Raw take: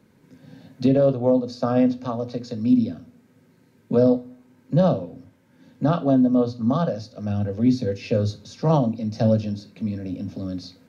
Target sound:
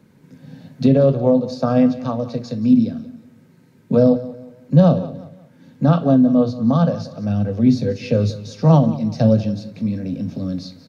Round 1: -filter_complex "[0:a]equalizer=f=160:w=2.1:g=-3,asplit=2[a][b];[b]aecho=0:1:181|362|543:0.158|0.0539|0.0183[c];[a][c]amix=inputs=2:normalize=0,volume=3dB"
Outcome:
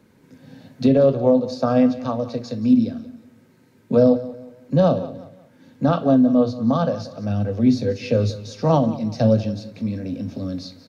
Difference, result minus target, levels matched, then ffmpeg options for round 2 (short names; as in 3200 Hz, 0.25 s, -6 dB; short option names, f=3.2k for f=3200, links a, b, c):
125 Hz band -3.5 dB
-filter_complex "[0:a]equalizer=f=160:w=2.1:g=6,asplit=2[a][b];[b]aecho=0:1:181|362|543:0.158|0.0539|0.0183[c];[a][c]amix=inputs=2:normalize=0,volume=3dB"